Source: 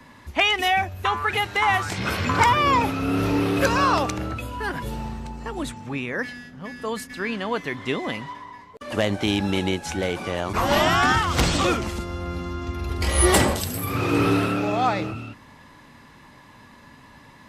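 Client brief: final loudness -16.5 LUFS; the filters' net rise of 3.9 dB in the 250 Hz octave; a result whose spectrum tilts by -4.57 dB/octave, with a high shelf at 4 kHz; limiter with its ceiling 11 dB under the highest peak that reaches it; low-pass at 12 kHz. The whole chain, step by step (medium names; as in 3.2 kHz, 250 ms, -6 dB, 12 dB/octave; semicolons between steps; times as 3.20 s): low-pass 12 kHz; peaking EQ 250 Hz +5 dB; treble shelf 4 kHz -6.5 dB; trim +10 dB; peak limiter -6.5 dBFS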